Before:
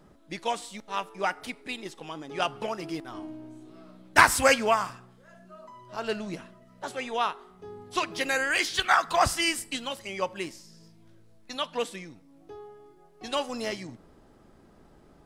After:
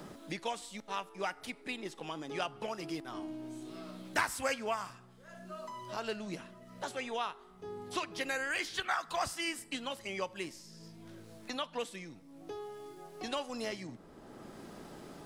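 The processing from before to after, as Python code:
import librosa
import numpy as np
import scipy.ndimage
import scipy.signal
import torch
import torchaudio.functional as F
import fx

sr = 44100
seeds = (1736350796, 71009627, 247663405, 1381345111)

y = fx.band_squash(x, sr, depth_pct=70)
y = y * librosa.db_to_amplitude(-7.5)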